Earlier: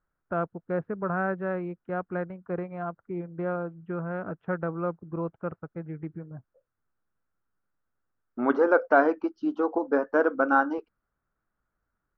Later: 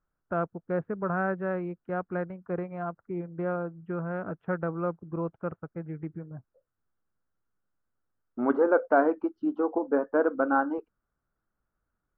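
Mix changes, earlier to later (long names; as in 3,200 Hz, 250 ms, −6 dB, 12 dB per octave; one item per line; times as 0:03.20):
second voice: add low-pass filter 1,100 Hz 6 dB per octave
master: add high-frequency loss of the air 110 metres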